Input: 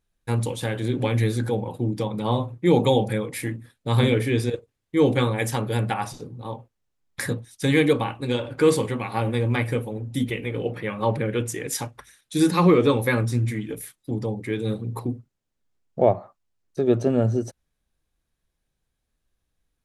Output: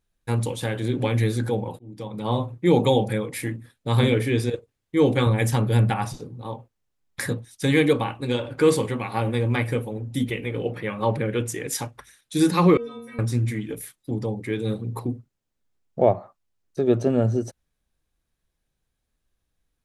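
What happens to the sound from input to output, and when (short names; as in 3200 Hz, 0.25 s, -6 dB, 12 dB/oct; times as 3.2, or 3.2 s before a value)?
1.79–2.39 fade in
5.26–6.16 tone controls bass +7 dB, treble 0 dB
12.77–13.19 metallic resonator 230 Hz, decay 0.73 s, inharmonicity 0.008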